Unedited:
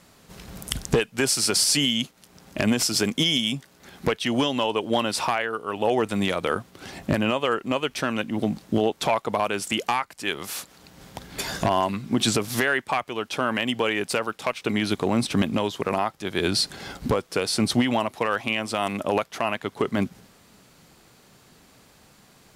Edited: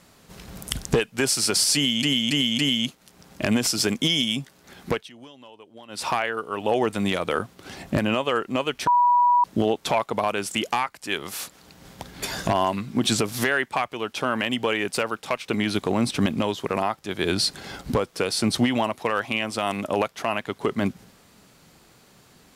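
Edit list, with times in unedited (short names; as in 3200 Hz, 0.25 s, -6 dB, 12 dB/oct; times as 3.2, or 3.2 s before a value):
1.75–2.03 loop, 4 plays
4.05–5.25 dip -22.5 dB, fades 0.21 s
8.03–8.6 bleep 973 Hz -14.5 dBFS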